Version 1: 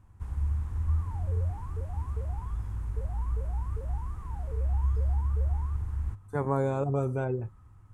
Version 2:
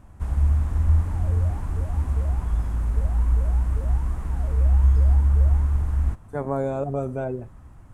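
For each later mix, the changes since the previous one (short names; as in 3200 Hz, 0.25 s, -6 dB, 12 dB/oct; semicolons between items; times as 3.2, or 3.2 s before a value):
first sound +11.0 dB; master: add thirty-one-band EQ 100 Hz -11 dB, 250 Hz +5 dB, 630 Hz +10 dB, 1000 Hz -3 dB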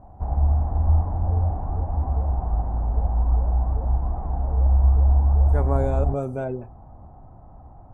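speech: entry -0.80 s; first sound: add synth low-pass 760 Hz, resonance Q 5.8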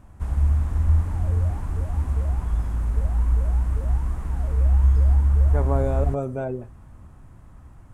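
first sound: remove synth low-pass 760 Hz, resonance Q 5.8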